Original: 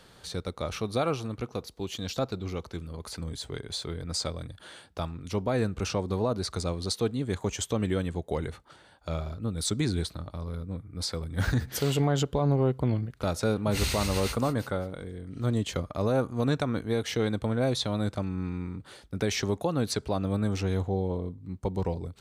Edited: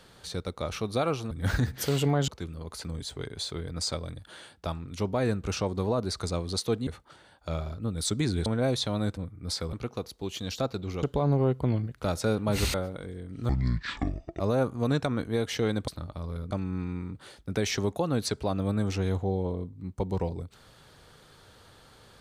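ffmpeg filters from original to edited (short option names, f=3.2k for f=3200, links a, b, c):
-filter_complex "[0:a]asplit=13[a][b][c][d][e][f][g][h][i][j][k][l][m];[a]atrim=end=1.312[n];[b]atrim=start=11.248:end=12.222[o];[c]atrim=start=2.608:end=7.202[p];[d]atrim=start=8.468:end=10.062[q];[e]atrim=start=17.448:end=18.162[r];[f]atrim=start=10.688:end=11.252[s];[g]atrim=start=1.308:end=2.612[t];[h]atrim=start=12.218:end=13.932[u];[i]atrim=start=14.718:end=15.474[v];[j]atrim=start=15.47:end=15.97,asetpts=PTS-STARTPTS,asetrate=24255,aresample=44100[w];[k]atrim=start=15.966:end=17.452[x];[l]atrim=start=10.058:end=10.692[y];[m]atrim=start=18.158[z];[n][o]acrossfade=d=0.004:c1=hsin:c2=hsin[aa];[aa][p]acrossfade=d=0.004:c1=hsin:c2=hsin[ab];[ab][q]acrossfade=d=0.004:c1=hsin:c2=hsin[ac];[ac][r]acrossfade=d=0.004:c1=hsin:c2=hsin[ad];[ad][s]acrossfade=d=0.004:c1=hsin:c2=hsin[ae];[ae][t]acrossfade=d=0.004:c1=hsin:c2=hsin[af];[af][u]acrossfade=d=0.004:c1=hsin:c2=hsin[ag];[ag][v]acrossfade=d=0.004:c1=hsin:c2=hsin[ah];[ah][w]acrossfade=d=0.004:c1=hsin:c2=hsin[ai];[ai][x]acrossfade=d=0.004:c1=hsin:c2=hsin[aj];[aj][y]acrossfade=d=0.004:c1=hsin:c2=hsin[ak];[ak][z]acrossfade=d=0.004:c1=hsin:c2=hsin"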